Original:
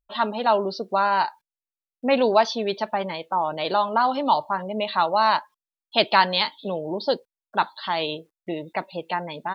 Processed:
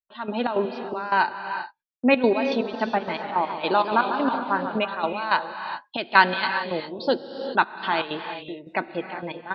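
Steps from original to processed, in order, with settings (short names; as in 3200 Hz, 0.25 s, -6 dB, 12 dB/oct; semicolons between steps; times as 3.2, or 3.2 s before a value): gate -47 dBFS, range -25 dB; bell 1900 Hz +5 dB 2.2 oct; small resonant body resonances 250/350/1500/2500 Hz, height 9 dB, ringing for 45 ms; step gate "x..xx.x.." 161 bpm -12 dB; air absorption 85 m; non-linear reverb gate 0.43 s rising, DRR 7.5 dB; 2.59–4.79 warbling echo 0.141 s, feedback 66%, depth 155 cents, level -10 dB; gain -2 dB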